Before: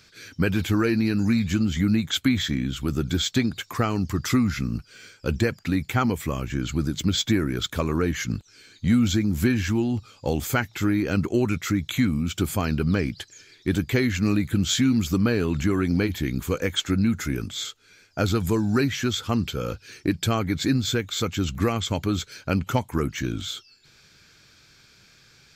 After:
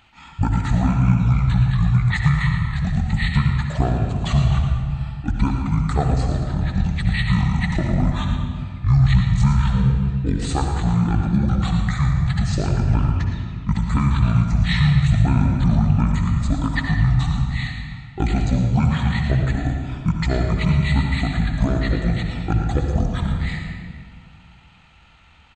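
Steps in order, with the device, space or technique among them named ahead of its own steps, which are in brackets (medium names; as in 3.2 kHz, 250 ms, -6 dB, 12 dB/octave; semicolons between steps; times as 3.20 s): monster voice (pitch shift -10 st; bass shelf 230 Hz +4 dB; delay 114 ms -10.5 dB; reverberation RT60 2.0 s, pre-delay 57 ms, DRR 3 dB)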